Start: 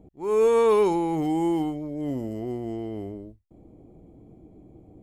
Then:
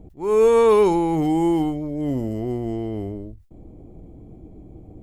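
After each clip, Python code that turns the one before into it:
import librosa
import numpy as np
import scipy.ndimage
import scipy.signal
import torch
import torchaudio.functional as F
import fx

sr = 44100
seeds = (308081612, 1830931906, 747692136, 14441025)

y = fx.low_shelf(x, sr, hz=81.0, db=11.5)
y = fx.sustainer(y, sr, db_per_s=130.0)
y = F.gain(torch.from_numpy(y), 4.0).numpy()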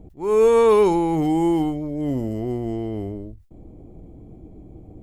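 y = x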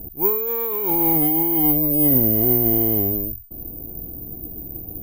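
y = fx.dynamic_eq(x, sr, hz=1900.0, q=1.5, threshold_db=-42.0, ratio=4.0, max_db=5)
y = fx.over_compress(y, sr, threshold_db=-23.0, ratio=-1.0)
y = (np.kron(scipy.signal.resample_poly(y, 1, 3), np.eye(3)[0]) * 3)[:len(y)]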